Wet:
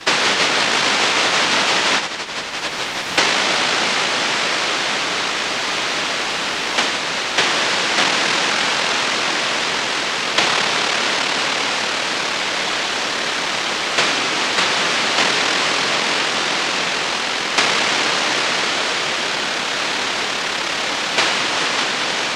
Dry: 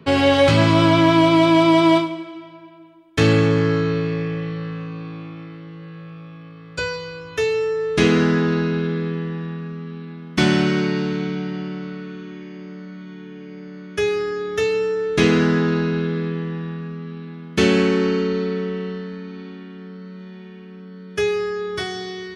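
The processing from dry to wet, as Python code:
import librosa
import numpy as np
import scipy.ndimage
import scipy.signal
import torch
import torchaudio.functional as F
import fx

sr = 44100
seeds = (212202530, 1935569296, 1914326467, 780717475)

p1 = fx.noise_vocoder(x, sr, seeds[0], bands=1)
p2 = scipy.signal.sosfilt(scipy.signal.bessel(2, 240.0, 'highpass', norm='mag', fs=sr, output='sos'), p1)
p3 = fx.quant_dither(p2, sr, seeds[1], bits=6, dither='triangular')
p4 = p2 + F.gain(torch.from_numpy(p3), -8.5).numpy()
p5 = scipy.signal.sosfilt(scipy.signal.butter(2, 3700.0, 'lowpass', fs=sr, output='sos'), p4)
p6 = fx.band_squash(p5, sr, depth_pct=100)
y = F.gain(torch.from_numpy(p6), 1.5).numpy()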